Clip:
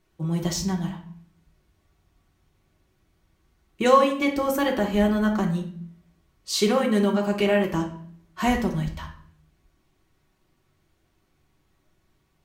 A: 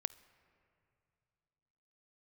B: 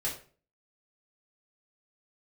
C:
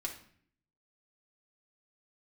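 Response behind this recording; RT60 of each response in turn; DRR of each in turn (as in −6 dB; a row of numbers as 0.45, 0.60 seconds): C; 2.7, 0.40, 0.55 seconds; 17.5, −6.0, −1.0 decibels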